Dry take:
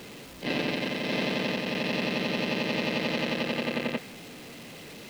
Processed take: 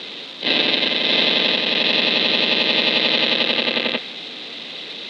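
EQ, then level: HPF 270 Hz 12 dB/oct; synth low-pass 3700 Hz, resonance Q 7.4; +7.0 dB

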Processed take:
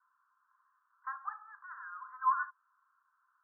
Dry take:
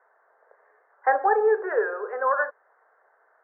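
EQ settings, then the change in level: rippled Chebyshev high-pass 1000 Hz, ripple 6 dB; steep low-pass 1300 Hz 36 dB/oct; -2.0 dB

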